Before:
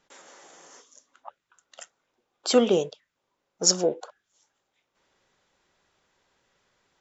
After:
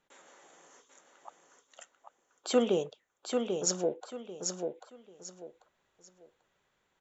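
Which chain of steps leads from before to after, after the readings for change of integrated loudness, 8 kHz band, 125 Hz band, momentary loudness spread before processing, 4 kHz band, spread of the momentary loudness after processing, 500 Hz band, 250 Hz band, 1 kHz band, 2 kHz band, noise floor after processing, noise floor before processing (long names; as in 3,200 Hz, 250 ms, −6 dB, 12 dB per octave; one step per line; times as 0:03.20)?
−9.0 dB, can't be measured, −5.0 dB, 15 LU, −10.5 dB, 20 LU, −5.0 dB, −5.0 dB, −5.5 dB, −5.5 dB, −77 dBFS, −80 dBFS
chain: parametric band 5,100 Hz −9 dB 0.43 octaves
repeating echo 791 ms, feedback 26%, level −5 dB
level −6.5 dB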